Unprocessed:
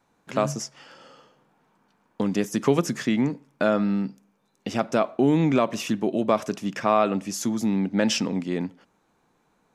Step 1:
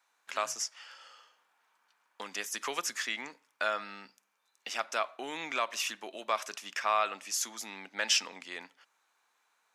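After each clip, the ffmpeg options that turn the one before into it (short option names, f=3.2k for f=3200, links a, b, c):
-af "highpass=1.3k"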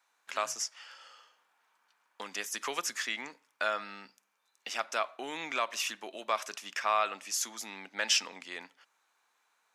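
-af anull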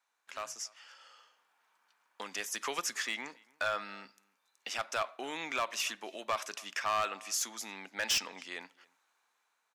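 -filter_complex "[0:a]asplit=2[a][b];[b]adelay=279.9,volume=-26dB,highshelf=f=4k:g=-6.3[c];[a][c]amix=inputs=2:normalize=0,volume=24.5dB,asoftclip=hard,volume=-24.5dB,dynaudnorm=f=250:g=9:m=6.5dB,volume=-7dB"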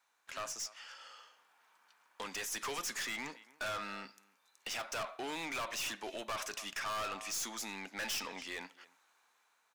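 -af "aeval=exprs='(tanh(100*val(0)+0.15)-tanh(0.15))/100':c=same,volume=4.5dB"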